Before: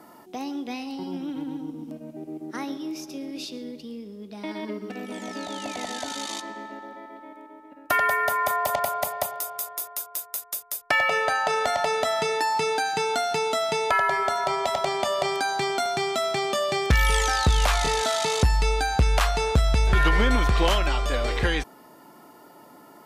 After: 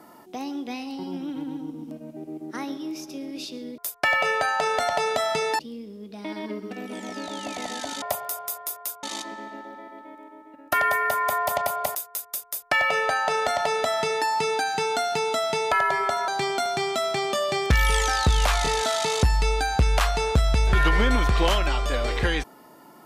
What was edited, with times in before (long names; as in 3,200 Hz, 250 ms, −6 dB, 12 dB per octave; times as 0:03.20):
0:09.13–0:10.14: move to 0:06.21
0:10.65–0:12.46: duplicate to 0:03.78
0:14.47–0:15.48: remove